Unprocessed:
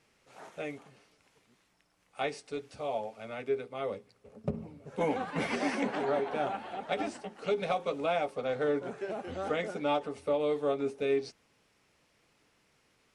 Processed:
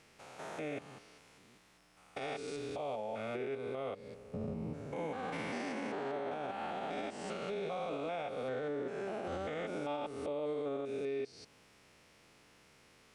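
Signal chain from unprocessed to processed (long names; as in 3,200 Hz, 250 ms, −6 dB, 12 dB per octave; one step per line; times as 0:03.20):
spectrum averaged block by block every 200 ms
downward compressor 4 to 1, threshold −43 dBFS, peak gain reduction 12.5 dB
brickwall limiter −38 dBFS, peak gain reduction 8 dB
level +7.5 dB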